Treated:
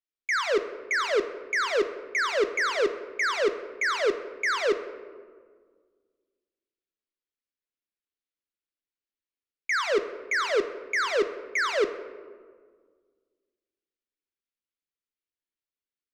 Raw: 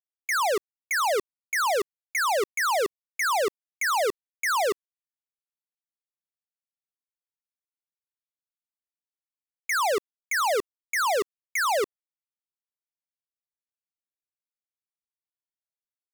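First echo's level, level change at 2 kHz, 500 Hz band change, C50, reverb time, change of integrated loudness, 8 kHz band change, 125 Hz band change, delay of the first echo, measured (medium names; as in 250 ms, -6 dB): no echo, +1.0 dB, +1.5 dB, 11.0 dB, 1.7 s, -0.5 dB, -8.0 dB, no reading, no echo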